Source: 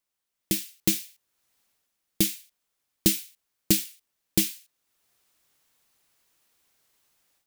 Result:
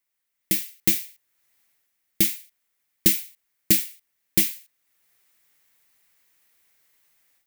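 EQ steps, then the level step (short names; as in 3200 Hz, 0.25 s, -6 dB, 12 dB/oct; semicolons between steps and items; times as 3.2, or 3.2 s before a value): bell 2000 Hz +9 dB 0.64 oct; high shelf 11000 Hz +9.5 dB; -1.5 dB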